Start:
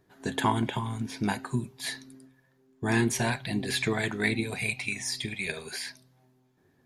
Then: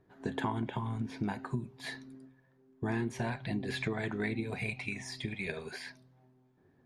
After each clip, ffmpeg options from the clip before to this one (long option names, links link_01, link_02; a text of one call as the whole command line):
ffmpeg -i in.wav -af "lowpass=frequency=1400:poles=1,acompressor=threshold=-31dB:ratio=4" out.wav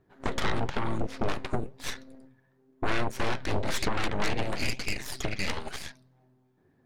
ffmpeg -i in.wav -af "aeval=exprs='0.112*(cos(1*acos(clip(val(0)/0.112,-1,1)))-cos(1*PI/2))+0.0282*(cos(7*acos(clip(val(0)/0.112,-1,1)))-cos(7*PI/2))+0.0447*(cos(8*acos(clip(val(0)/0.112,-1,1)))-cos(8*PI/2))':channel_layout=same,asoftclip=type=tanh:threshold=-21dB,flanger=delay=0.7:depth=9.9:regen=83:speed=1:shape=sinusoidal,volume=7.5dB" out.wav